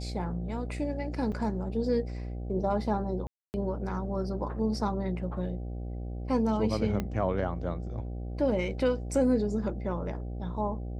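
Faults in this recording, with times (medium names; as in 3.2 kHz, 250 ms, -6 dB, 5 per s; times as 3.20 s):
buzz 60 Hz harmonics 13 -36 dBFS
1.32–1.33 s: dropout 5.5 ms
3.27–3.54 s: dropout 269 ms
7.00 s: pop -18 dBFS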